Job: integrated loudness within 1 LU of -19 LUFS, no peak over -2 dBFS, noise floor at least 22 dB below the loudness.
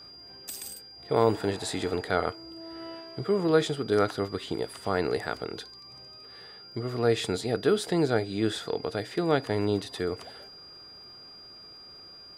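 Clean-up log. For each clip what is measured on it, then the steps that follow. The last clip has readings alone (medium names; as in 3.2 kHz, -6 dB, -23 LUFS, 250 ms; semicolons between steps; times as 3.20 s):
tick rate 21 per s; steady tone 4.8 kHz; tone level -46 dBFS; loudness -28.5 LUFS; peak level -8.5 dBFS; loudness target -19.0 LUFS
-> de-click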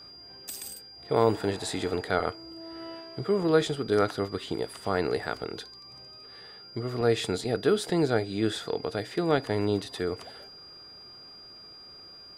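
tick rate 0.081 per s; steady tone 4.8 kHz; tone level -46 dBFS
-> band-stop 4.8 kHz, Q 30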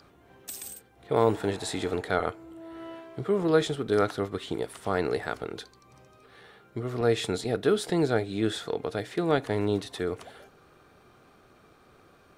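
steady tone not found; loudness -28.5 LUFS; peak level -8.5 dBFS; loudness target -19.0 LUFS
-> trim +9.5 dB; peak limiter -2 dBFS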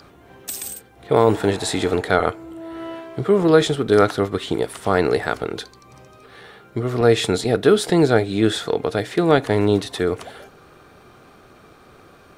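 loudness -19.5 LUFS; peak level -2.0 dBFS; noise floor -49 dBFS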